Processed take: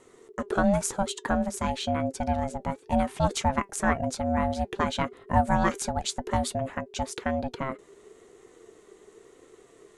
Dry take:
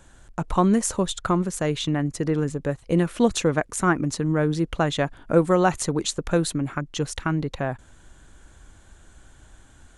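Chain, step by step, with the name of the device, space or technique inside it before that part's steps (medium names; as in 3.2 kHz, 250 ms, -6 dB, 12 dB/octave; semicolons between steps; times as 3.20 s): alien voice (ring modulator 400 Hz; flange 0.95 Hz, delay 3.7 ms, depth 1.4 ms, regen +74%); trim +3 dB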